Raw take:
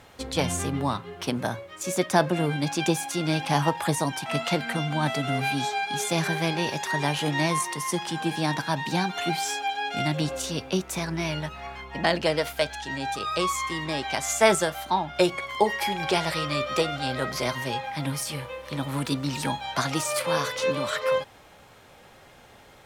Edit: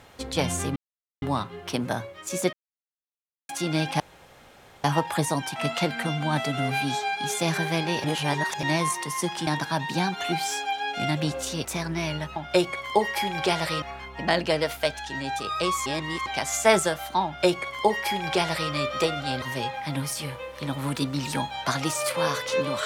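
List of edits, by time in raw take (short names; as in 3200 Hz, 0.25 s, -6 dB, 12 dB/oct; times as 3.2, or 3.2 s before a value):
0.76 insert silence 0.46 s
2.07–3.03 mute
3.54 insert room tone 0.84 s
6.74–7.33 reverse
8.17–8.44 cut
10.62–10.87 cut
13.62–14.02 reverse
15.01–16.47 copy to 11.58
17.18–17.52 cut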